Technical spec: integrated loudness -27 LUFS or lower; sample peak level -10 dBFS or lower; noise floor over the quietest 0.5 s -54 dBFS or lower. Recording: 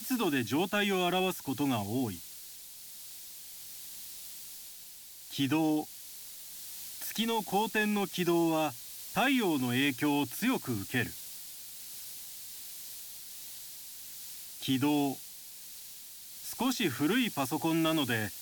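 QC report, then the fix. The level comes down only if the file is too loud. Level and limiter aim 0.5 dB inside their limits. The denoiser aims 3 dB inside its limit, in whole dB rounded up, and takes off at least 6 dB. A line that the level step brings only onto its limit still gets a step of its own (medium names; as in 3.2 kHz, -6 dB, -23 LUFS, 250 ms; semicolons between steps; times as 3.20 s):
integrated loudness -32.5 LUFS: pass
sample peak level -16.5 dBFS: pass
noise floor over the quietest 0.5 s -49 dBFS: fail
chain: noise reduction 8 dB, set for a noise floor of -49 dBFS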